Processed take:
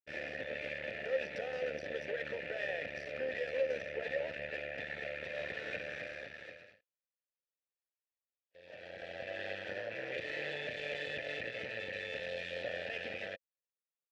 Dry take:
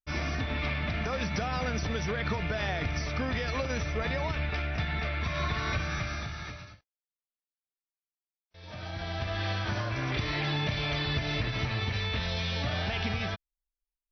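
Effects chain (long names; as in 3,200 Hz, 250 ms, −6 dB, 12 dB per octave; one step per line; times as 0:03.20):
half-wave rectification
formant filter e
level +9 dB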